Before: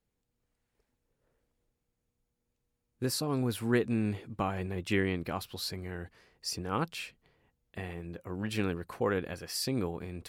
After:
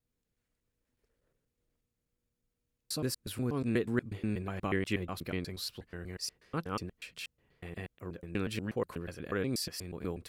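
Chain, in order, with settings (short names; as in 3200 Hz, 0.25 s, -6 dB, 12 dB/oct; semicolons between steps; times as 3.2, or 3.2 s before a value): slices in reverse order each 0.121 s, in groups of 3; bell 830 Hz -6 dB 0.55 oct; gain -2 dB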